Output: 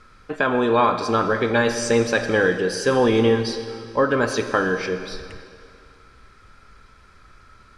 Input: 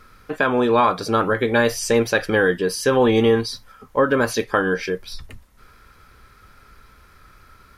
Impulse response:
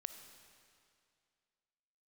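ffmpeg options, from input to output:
-filter_complex "[0:a]lowpass=frequency=8800:width=0.5412,lowpass=frequency=8800:width=1.3066[link_01];[1:a]atrim=start_sample=2205[link_02];[link_01][link_02]afir=irnorm=-1:irlink=0,volume=2.5dB"

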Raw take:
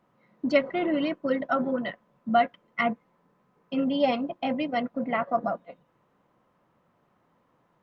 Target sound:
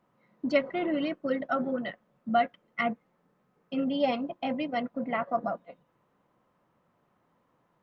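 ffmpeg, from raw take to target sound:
ffmpeg -i in.wav -filter_complex "[0:a]asettb=1/sr,asplit=3[link_01][link_02][link_03];[link_01]atrim=end=0.924[link_04];[link_02]atrim=start=0.92:end=4.07,asetpts=PTS-STARTPTS,afade=type=in:duration=0.004:curve=qsin,afade=type=out:start_time=3.146:duration=0.004:curve=qsin,bandreject=frequency=990:width=9.1[link_05];[link_03]atrim=start=4.066[link_06];[link_04][link_05]acrossfade=duration=0.004:curve1=hsin:curve2=qsin[link_07];[link_07][link_06]acrossfade=duration=0.004:curve1=qsin:curve2=hsin,volume=-3dB" out.wav

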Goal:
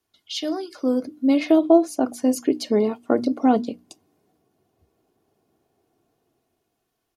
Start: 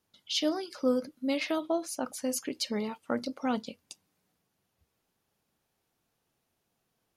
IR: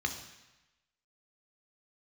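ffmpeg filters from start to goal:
-filter_complex "[0:a]bandreject=frequency=60:width_type=h:width=6,bandreject=frequency=120:width_type=h:width=6,bandreject=frequency=180:width_type=h:width=6,bandreject=frequency=240:width_type=h:width=6,bandreject=frequency=300:width_type=h:width=6,aecho=1:1:2.8:0.5,acrossover=split=100|780|4800[link_01][link_02][link_03][link_04];[link_02]dynaudnorm=framelen=300:gausssize=7:maxgain=15dB[link_05];[link_01][link_05][link_03][link_04]amix=inputs=4:normalize=0"

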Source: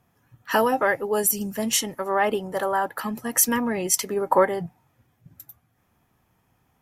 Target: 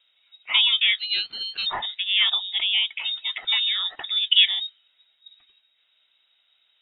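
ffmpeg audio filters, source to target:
ffmpeg -i in.wav -filter_complex "[0:a]lowpass=frequency=3300:width_type=q:width=0.5098,lowpass=frequency=3300:width_type=q:width=0.6013,lowpass=frequency=3300:width_type=q:width=0.9,lowpass=frequency=3300:width_type=q:width=2.563,afreqshift=-3900,asplit=3[link_01][link_02][link_03];[link_01]afade=type=out:start_time=0.98:duration=0.02[link_04];[link_02]aeval=exprs='val(0)*sin(2*PI*590*n/s)':channel_layout=same,afade=type=in:start_time=0.98:duration=0.02,afade=type=out:start_time=1.65:duration=0.02[link_05];[link_03]afade=type=in:start_time=1.65:duration=0.02[link_06];[link_04][link_05][link_06]amix=inputs=3:normalize=0,volume=1dB" out.wav

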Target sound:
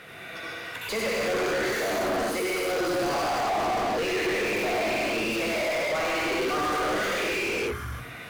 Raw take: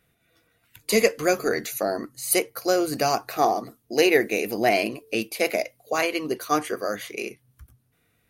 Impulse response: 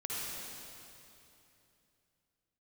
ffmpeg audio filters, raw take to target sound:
-filter_complex "[0:a]asplit=2[link_01][link_02];[link_02]acrusher=bits=5:mix=0:aa=0.000001,volume=-10dB[link_03];[link_01][link_03]amix=inputs=2:normalize=0,bandreject=frequency=60:width_type=h:width=6,bandreject=frequency=120:width_type=h:width=6,bandreject=frequency=180:width_type=h:width=6,bandreject=frequency=240:width_type=h:width=6,bandreject=frequency=300:width_type=h:width=6,bandreject=frequency=360:width_type=h:width=6,bandreject=frequency=420:width_type=h:width=6,bandreject=frequency=480:width_type=h:width=6,areverse,acompressor=threshold=-30dB:ratio=6,areverse,highshelf=frequency=7300:gain=-7.5[link_04];[1:a]atrim=start_sample=2205,afade=type=out:start_time=0.38:duration=0.01,atrim=end_sample=17199,asetrate=37044,aresample=44100[link_05];[link_04][link_05]afir=irnorm=-1:irlink=0,asplit=2[link_06][link_07];[link_07]highpass=frequency=720:poles=1,volume=40dB,asoftclip=type=tanh:threshold=-18dB[link_08];[link_06][link_08]amix=inputs=2:normalize=0,lowpass=frequency=2500:poles=1,volume=-6dB,volume=-2dB"

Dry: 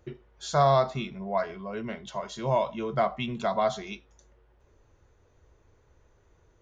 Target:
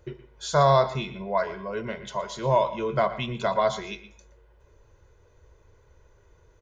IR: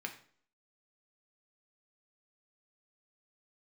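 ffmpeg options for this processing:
-filter_complex "[0:a]aecho=1:1:2:0.43,asplit=2[link_01][link_02];[1:a]atrim=start_sample=2205,adelay=117[link_03];[link_02][link_03]afir=irnorm=-1:irlink=0,volume=-13dB[link_04];[link_01][link_04]amix=inputs=2:normalize=0,volume=2.5dB"

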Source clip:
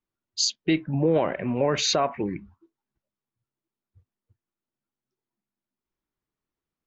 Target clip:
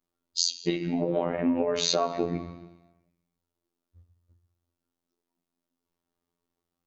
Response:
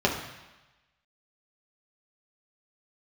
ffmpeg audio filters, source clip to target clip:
-filter_complex "[0:a]asplit=2[link_01][link_02];[1:a]atrim=start_sample=2205[link_03];[link_02][link_03]afir=irnorm=-1:irlink=0,volume=-17.5dB[link_04];[link_01][link_04]amix=inputs=2:normalize=0,acompressor=threshold=-24dB:ratio=8,afftfilt=real='hypot(re,im)*cos(PI*b)':imag='0':win_size=2048:overlap=0.75,volume=5dB"

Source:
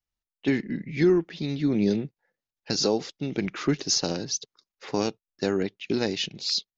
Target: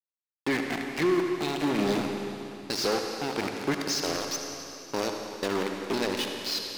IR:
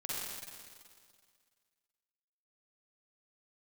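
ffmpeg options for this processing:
-filter_complex "[0:a]aeval=exprs='val(0)*gte(abs(val(0)),0.0473)':channel_layout=same,asplit=2[link_01][link_02];[link_02]highpass=frequency=720:poles=1,volume=20dB,asoftclip=type=tanh:threshold=-11.5dB[link_03];[link_01][link_03]amix=inputs=2:normalize=0,lowpass=frequency=3800:poles=1,volume=-6dB,asplit=2[link_04][link_05];[1:a]atrim=start_sample=2205,asetrate=29988,aresample=44100[link_06];[link_05][link_06]afir=irnorm=-1:irlink=0,volume=-5.5dB[link_07];[link_04][link_07]amix=inputs=2:normalize=0,volume=-9dB"

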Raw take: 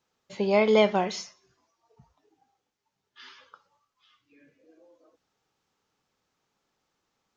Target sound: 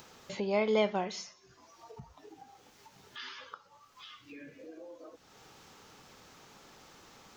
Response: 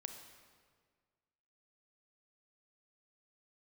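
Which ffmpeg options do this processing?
-af "acompressor=mode=upward:threshold=-25dB:ratio=2.5,volume=-7.5dB"

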